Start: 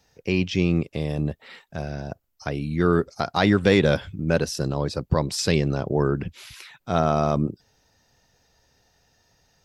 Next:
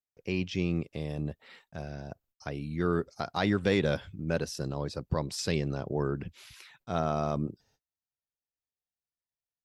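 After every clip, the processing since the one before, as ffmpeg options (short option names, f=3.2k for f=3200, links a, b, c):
-af "agate=range=-33dB:threshold=-56dB:ratio=16:detection=peak,volume=-8.5dB"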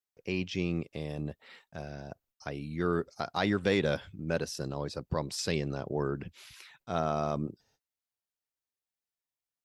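-af "lowshelf=f=180:g=-5"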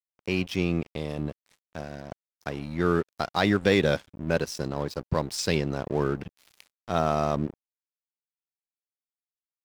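-af "aeval=exprs='sgn(val(0))*max(abs(val(0))-0.00473,0)':c=same,volume=6.5dB"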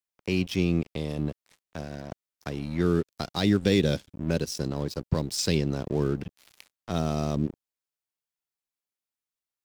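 -filter_complex "[0:a]acrossover=split=420|3000[a][b][c];[b]acompressor=threshold=-44dB:ratio=2.5[d];[a][d][c]amix=inputs=3:normalize=0,volume=2.5dB"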